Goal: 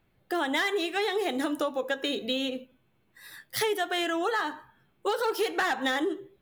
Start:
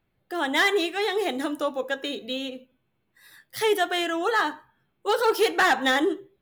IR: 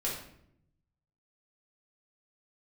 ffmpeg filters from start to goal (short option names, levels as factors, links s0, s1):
-af "acompressor=threshold=0.0316:ratio=6,volume=1.68"